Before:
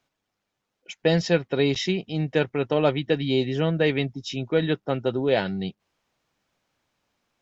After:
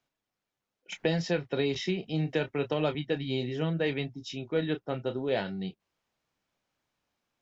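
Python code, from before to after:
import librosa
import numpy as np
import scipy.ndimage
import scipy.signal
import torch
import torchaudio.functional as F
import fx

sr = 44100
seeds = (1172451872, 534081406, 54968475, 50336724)

y = fx.chorus_voices(x, sr, voices=2, hz=0.71, base_ms=29, depth_ms=3.7, mix_pct=25)
y = fx.band_squash(y, sr, depth_pct=70, at=(0.92, 2.95))
y = F.gain(torch.from_numpy(y), -5.0).numpy()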